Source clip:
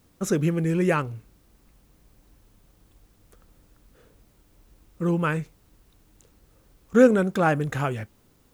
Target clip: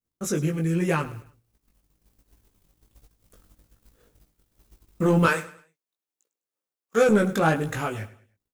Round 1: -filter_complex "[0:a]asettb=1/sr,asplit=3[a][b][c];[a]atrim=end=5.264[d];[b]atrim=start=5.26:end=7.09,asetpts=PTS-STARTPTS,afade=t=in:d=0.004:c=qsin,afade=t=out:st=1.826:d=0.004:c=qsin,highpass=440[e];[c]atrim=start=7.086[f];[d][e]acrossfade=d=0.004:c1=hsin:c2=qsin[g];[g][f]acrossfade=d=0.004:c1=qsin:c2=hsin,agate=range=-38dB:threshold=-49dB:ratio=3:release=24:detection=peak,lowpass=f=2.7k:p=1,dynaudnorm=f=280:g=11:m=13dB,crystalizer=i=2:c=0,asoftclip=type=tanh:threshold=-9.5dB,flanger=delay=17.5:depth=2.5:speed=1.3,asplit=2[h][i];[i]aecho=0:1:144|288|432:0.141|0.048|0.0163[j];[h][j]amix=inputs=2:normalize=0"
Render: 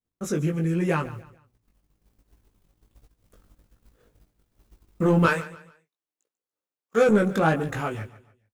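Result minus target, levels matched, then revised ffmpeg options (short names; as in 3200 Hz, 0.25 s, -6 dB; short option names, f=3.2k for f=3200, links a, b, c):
echo 41 ms late; 8000 Hz band -5.5 dB
-filter_complex "[0:a]asettb=1/sr,asplit=3[a][b][c];[a]atrim=end=5.264[d];[b]atrim=start=5.26:end=7.09,asetpts=PTS-STARTPTS,afade=t=in:d=0.004:c=qsin,afade=t=out:st=1.826:d=0.004:c=qsin,highpass=440[e];[c]atrim=start=7.086[f];[d][e]acrossfade=d=0.004:c1=hsin:c2=qsin[g];[g][f]acrossfade=d=0.004:c1=qsin:c2=hsin,agate=range=-38dB:threshold=-49dB:ratio=3:release=24:detection=peak,lowpass=f=6.7k:p=1,dynaudnorm=f=280:g=11:m=13dB,crystalizer=i=2:c=0,asoftclip=type=tanh:threshold=-9.5dB,flanger=delay=17.5:depth=2.5:speed=1.3,asplit=2[h][i];[i]aecho=0:1:103|206|309:0.141|0.048|0.0163[j];[h][j]amix=inputs=2:normalize=0"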